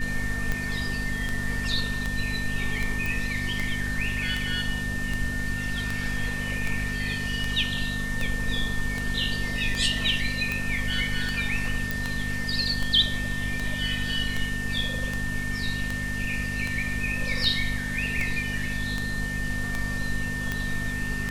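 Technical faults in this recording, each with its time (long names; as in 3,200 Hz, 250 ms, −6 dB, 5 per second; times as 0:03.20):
mains hum 50 Hz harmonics 5 −33 dBFS
scratch tick 78 rpm −14 dBFS
whistle 1,800 Hz −31 dBFS
0:03.06: click
0:11.91: click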